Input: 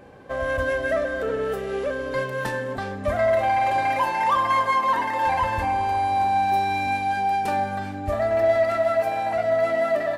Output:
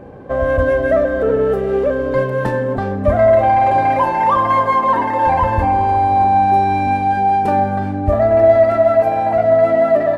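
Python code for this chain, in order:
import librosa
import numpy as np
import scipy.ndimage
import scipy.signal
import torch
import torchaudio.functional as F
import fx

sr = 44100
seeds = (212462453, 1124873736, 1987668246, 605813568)

y = fx.tilt_shelf(x, sr, db=9.0, hz=1500.0)
y = F.gain(torch.from_numpy(y), 3.5).numpy()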